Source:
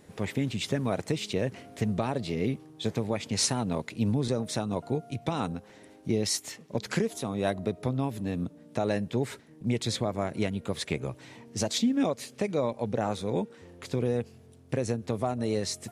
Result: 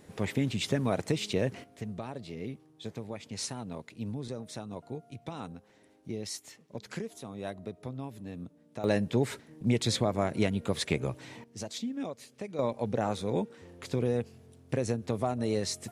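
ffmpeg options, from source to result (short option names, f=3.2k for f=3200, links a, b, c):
-af "asetnsamples=n=441:p=0,asendcmd='1.64 volume volume -10dB;8.84 volume volume 1.5dB;11.44 volume volume -10dB;12.59 volume volume -1dB',volume=0dB"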